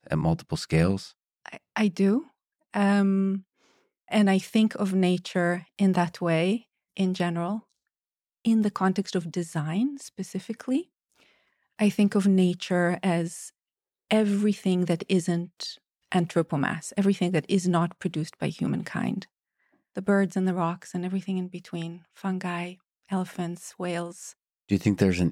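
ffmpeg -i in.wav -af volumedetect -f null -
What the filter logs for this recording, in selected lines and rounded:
mean_volume: -26.7 dB
max_volume: -8.4 dB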